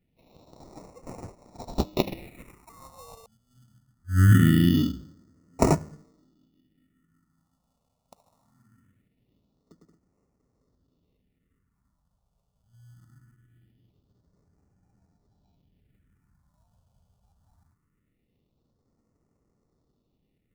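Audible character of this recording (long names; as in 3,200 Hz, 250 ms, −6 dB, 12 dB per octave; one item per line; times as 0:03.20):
aliases and images of a low sample rate 1,600 Hz, jitter 0%
phaser sweep stages 4, 0.22 Hz, lowest notch 310–3,300 Hz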